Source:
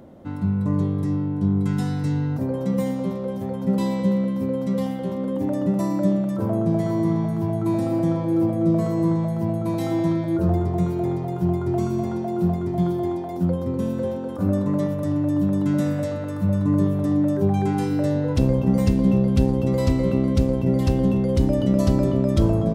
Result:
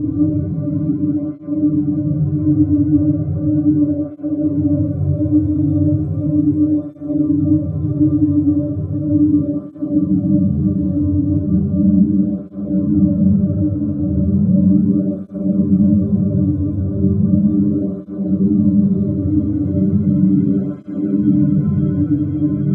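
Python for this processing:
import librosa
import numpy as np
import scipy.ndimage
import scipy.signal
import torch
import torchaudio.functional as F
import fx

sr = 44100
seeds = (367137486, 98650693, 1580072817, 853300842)

y = fx.paulstretch(x, sr, seeds[0], factor=40.0, window_s=0.1, from_s=15.16)
y = scipy.signal.lfilter(np.full(48, 1.0 / 48), 1.0, y)
y = fx.echo_diffused(y, sr, ms=1510, feedback_pct=74, wet_db=-4.5)
y = fx.rider(y, sr, range_db=10, speed_s=0.5)
y = fx.rev_schroeder(y, sr, rt60_s=1.1, comb_ms=33, drr_db=-9.0)
y = fx.flanger_cancel(y, sr, hz=0.36, depth_ms=5.5)
y = y * 10.0 ** (-1.0 / 20.0)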